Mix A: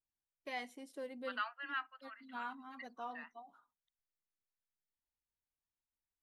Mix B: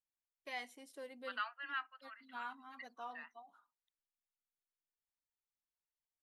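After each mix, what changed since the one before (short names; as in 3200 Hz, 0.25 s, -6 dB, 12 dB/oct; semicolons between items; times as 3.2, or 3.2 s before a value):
first voice: add high shelf 10000 Hz +3 dB; master: add low shelf 480 Hz -9.5 dB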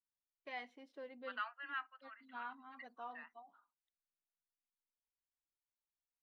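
master: add air absorption 250 m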